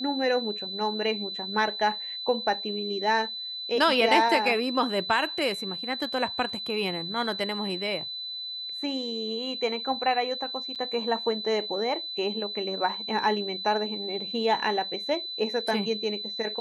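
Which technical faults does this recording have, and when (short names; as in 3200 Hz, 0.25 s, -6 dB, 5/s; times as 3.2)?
tone 4000 Hz -33 dBFS
10.75–10.76 gap 7.5 ms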